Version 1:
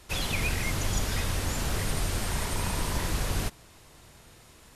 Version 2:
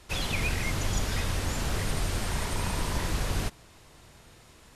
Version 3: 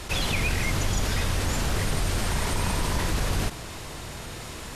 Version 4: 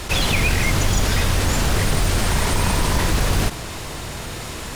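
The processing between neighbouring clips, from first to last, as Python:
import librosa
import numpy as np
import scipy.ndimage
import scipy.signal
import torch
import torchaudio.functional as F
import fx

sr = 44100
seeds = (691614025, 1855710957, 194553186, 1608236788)

y1 = fx.high_shelf(x, sr, hz=11000.0, db=-8.0)
y2 = fx.env_flatten(y1, sr, amount_pct=50)
y2 = y2 * 10.0 ** (1.5 / 20.0)
y3 = fx.quant_companded(y2, sr, bits=6)
y3 = y3 * 10.0 ** (7.0 / 20.0)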